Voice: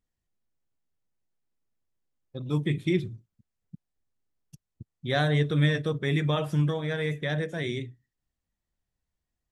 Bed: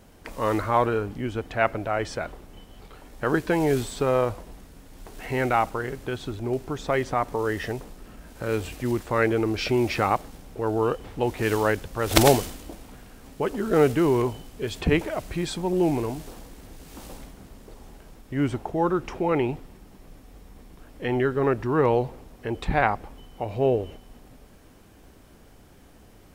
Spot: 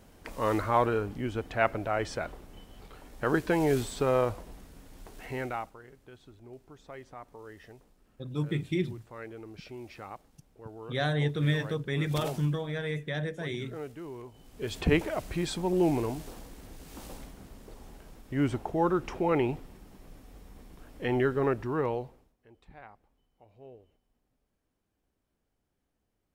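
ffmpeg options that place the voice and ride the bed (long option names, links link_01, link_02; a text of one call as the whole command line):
ffmpeg -i stem1.wav -i stem2.wav -filter_complex "[0:a]adelay=5850,volume=-4dB[link_01];[1:a]volume=14.5dB,afade=type=out:start_time=4.88:duration=0.88:silence=0.133352,afade=type=in:start_time=14.32:duration=0.44:silence=0.125893,afade=type=out:start_time=21.27:duration=1.08:silence=0.0530884[link_02];[link_01][link_02]amix=inputs=2:normalize=0" out.wav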